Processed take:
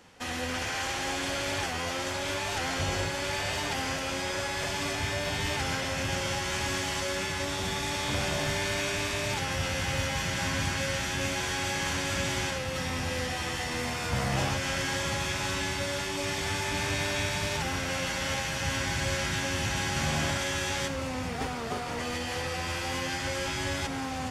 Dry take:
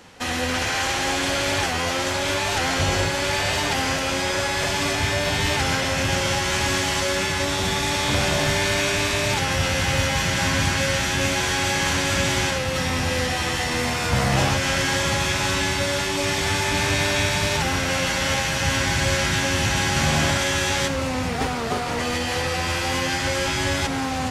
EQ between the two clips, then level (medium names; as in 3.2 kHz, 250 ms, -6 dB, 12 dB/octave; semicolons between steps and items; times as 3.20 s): band-stop 4 kHz, Q 24; -8.5 dB